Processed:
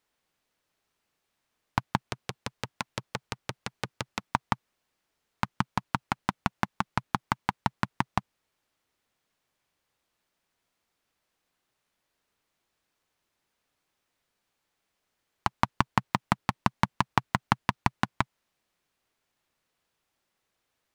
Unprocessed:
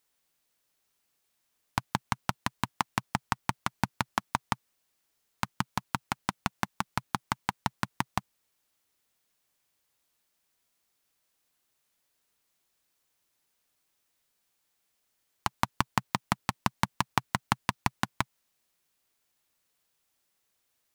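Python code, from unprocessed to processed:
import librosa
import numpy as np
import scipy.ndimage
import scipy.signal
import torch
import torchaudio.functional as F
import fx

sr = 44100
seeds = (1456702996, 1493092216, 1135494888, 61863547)

y = fx.lowpass(x, sr, hz=2600.0, slope=6)
y = fx.transformer_sat(y, sr, knee_hz=2600.0, at=(2.0, 4.3))
y = y * librosa.db_to_amplitude(3.5)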